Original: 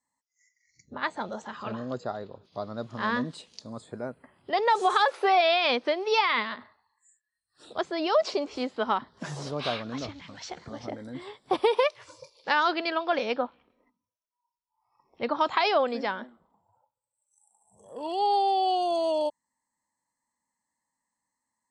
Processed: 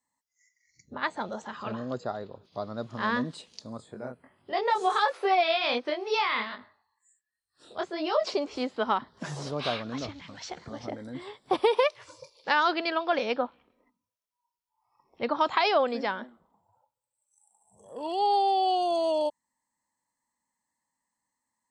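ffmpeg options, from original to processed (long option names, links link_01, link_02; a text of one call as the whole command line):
ffmpeg -i in.wav -filter_complex "[0:a]asettb=1/sr,asplit=3[link_01][link_02][link_03];[link_01]atrim=end=3.774[link_04];[link_02]atrim=start=3.77:end=8.27,asetpts=PTS-STARTPTS,afade=type=in:duration=0.004:curve=qsin,afade=type=out:start_time=4.496:duration=0.004:curve=qsin,flanger=delay=19.5:depth=5:speed=1.4[link_05];[link_03]atrim=start=8.266[link_06];[link_04][link_05]acrossfade=duration=0.004:curve1=hsin:curve2=qsin[link_07];[link_07][link_06]acrossfade=duration=0.004:curve1=qsin:curve2=hsin" out.wav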